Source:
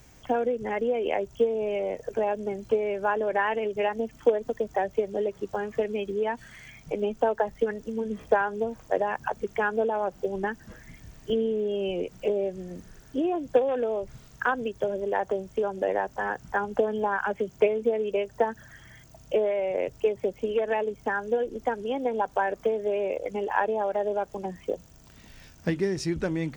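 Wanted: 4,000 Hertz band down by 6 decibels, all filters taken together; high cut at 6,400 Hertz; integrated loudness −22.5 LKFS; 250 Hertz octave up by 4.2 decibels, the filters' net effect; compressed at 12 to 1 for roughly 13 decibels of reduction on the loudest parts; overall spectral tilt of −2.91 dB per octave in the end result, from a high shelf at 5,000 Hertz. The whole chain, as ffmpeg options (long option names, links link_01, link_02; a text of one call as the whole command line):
ffmpeg -i in.wav -af "lowpass=6400,equalizer=frequency=250:width_type=o:gain=5.5,equalizer=frequency=4000:width_type=o:gain=-5,highshelf=frequency=5000:gain=-9,acompressor=threshold=-29dB:ratio=12,volume=12.5dB" out.wav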